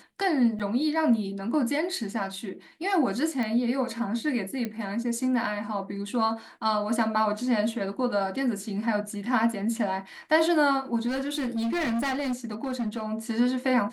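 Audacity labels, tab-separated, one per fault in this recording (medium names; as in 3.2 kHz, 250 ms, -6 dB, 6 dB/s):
0.590000	0.600000	dropout 7.6 ms
3.430000	3.430000	pop -20 dBFS
4.650000	4.650000	pop -18 dBFS
11.070000	13.060000	clipped -25 dBFS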